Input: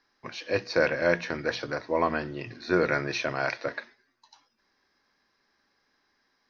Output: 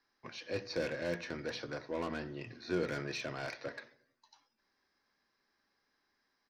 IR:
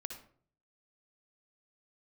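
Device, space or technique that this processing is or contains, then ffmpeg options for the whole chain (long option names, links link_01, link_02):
one-band saturation: -filter_complex "[0:a]acrossover=split=450|3300[link_01][link_02][link_03];[link_02]asoftclip=type=tanh:threshold=-32dB[link_04];[link_01][link_04][link_03]amix=inputs=3:normalize=0,asplit=2[link_05][link_06];[link_06]adelay=90,lowpass=frequency=840:poles=1,volume=-16.5dB,asplit=2[link_07][link_08];[link_08]adelay=90,lowpass=frequency=840:poles=1,volume=0.54,asplit=2[link_09][link_10];[link_10]adelay=90,lowpass=frequency=840:poles=1,volume=0.54,asplit=2[link_11][link_12];[link_12]adelay=90,lowpass=frequency=840:poles=1,volume=0.54,asplit=2[link_13][link_14];[link_14]adelay=90,lowpass=frequency=840:poles=1,volume=0.54[link_15];[link_05][link_07][link_09][link_11][link_13][link_15]amix=inputs=6:normalize=0,volume=-7.5dB"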